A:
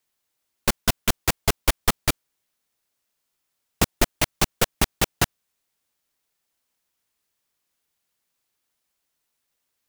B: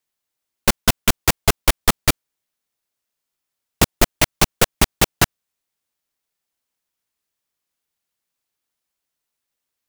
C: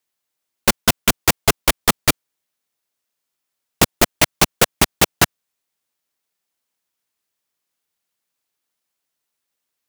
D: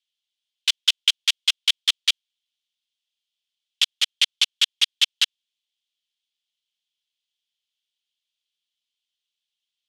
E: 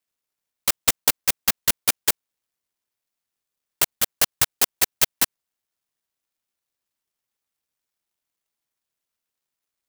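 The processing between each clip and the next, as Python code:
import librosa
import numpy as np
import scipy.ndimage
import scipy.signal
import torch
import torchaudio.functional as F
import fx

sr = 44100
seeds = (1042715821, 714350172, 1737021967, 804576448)

y1 = fx.leveller(x, sr, passes=2)
y2 = fx.low_shelf(y1, sr, hz=69.0, db=-12.0)
y2 = F.gain(torch.from_numpy(y2), 2.0).numpy()
y3 = fx.ladder_bandpass(y2, sr, hz=3500.0, resonance_pct=70)
y3 = F.gain(torch.from_numpy(y3), 7.5).numpy()
y4 = fx.clock_jitter(y3, sr, seeds[0], jitter_ms=0.15)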